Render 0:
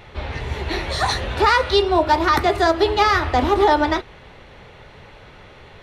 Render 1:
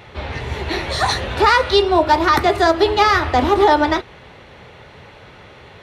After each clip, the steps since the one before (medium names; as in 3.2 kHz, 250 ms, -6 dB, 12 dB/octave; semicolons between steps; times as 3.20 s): high-pass 65 Hz; trim +2.5 dB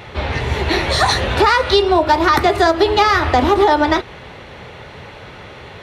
compression 3:1, threshold -17 dBFS, peak gain reduction 7 dB; trim +6 dB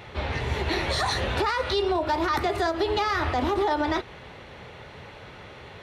peak limiter -8.5 dBFS, peak gain reduction 7 dB; trim -8 dB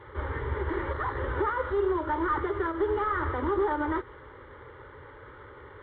CVSD coder 16 kbps; static phaser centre 700 Hz, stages 6